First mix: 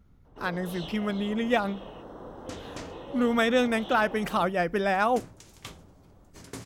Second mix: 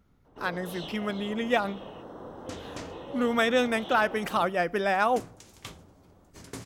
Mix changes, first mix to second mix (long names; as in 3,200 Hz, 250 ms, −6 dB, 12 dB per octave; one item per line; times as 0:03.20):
speech: add low-shelf EQ 180 Hz −9.5 dB
reverb: on, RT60 0.75 s